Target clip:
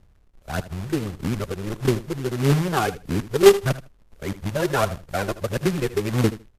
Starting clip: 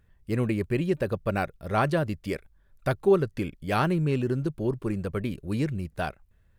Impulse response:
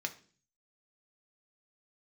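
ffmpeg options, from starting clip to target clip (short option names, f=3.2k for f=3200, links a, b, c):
-af "areverse,lowpass=f=2.3k:p=1,lowshelf=f=97:g=-2.5,adynamicsmooth=sensitivity=5:basefreq=720,aphaser=in_gain=1:out_gain=1:delay=2.9:decay=0.61:speed=1.6:type=triangular,acrusher=bits=2:mode=log:mix=0:aa=0.000001,aecho=1:1:78|156:0.168|0.0285,volume=1.5dB" -ar 32000 -c:a wmav2 -b:a 128k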